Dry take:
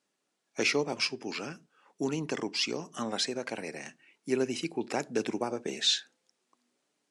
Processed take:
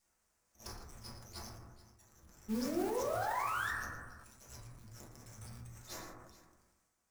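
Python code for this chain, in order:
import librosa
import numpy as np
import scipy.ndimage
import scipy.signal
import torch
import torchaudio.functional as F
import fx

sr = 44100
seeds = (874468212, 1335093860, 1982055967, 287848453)

y = scipy.signal.sosfilt(scipy.signal.cheby2(4, 70, [260.0, 1500.0], 'bandstop', fs=sr, output='sos'), x)
y = fx.tilt_eq(y, sr, slope=-1.5)
y = fx.auto_swell(y, sr, attack_ms=481.0)
y = fx.rider(y, sr, range_db=4, speed_s=0.5)
y = fx.env_phaser(y, sr, low_hz=340.0, high_hz=3400.0, full_db=-52.0)
y = fx.echo_multitap(y, sr, ms=(115, 430), db=(-13.5, -19.5))
y = fx.spec_paint(y, sr, seeds[0], shape='rise', start_s=2.48, length_s=1.23, low_hz=210.0, high_hz=1900.0, level_db=-54.0)
y = fx.mod_noise(y, sr, seeds[1], snr_db=11)
y = np.maximum(y, 0.0)
y = fx.rev_fdn(y, sr, rt60_s=1.1, lf_ratio=1.1, hf_ratio=0.25, size_ms=82.0, drr_db=-8.5)
y = fx.sustainer(y, sr, db_per_s=37.0)
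y = y * librosa.db_to_amplitude(12.5)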